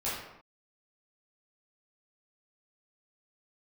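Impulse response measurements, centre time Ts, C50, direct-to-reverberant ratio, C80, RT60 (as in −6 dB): 64 ms, 0.5 dB, −10.0 dB, 4.0 dB, non-exponential decay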